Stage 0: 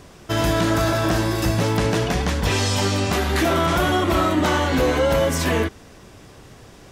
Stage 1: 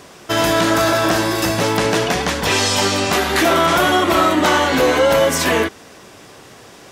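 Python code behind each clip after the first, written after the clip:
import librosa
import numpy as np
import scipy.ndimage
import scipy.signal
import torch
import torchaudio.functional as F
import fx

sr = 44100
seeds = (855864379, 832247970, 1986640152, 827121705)

y = fx.highpass(x, sr, hz=380.0, slope=6)
y = F.gain(torch.from_numpy(y), 7.0).numpy()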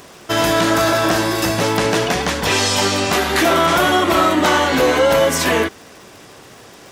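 y = fx.dmg_crackle(x, sr, seeds[0], per_s=120.0, level_db=-33.0)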